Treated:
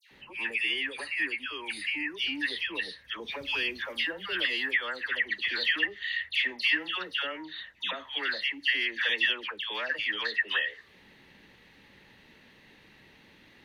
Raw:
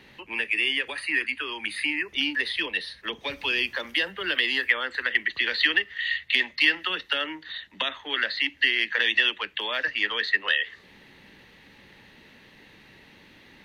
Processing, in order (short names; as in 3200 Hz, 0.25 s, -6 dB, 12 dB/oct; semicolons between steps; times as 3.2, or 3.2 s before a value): dispersion lows, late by 0.112 s, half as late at 1800 Hz; gain -4.5 dB